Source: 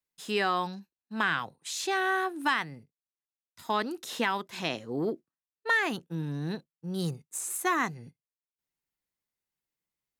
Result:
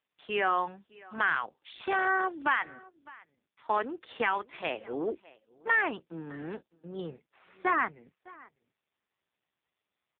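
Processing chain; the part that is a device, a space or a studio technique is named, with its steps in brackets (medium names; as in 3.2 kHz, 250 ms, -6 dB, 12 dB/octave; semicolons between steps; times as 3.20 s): satellite phone (band-pass 350–3100 Hz; delay 608 ms -22.5 dB; trim +2 dB; AMR-NB 5.15 kbps 8 kHz)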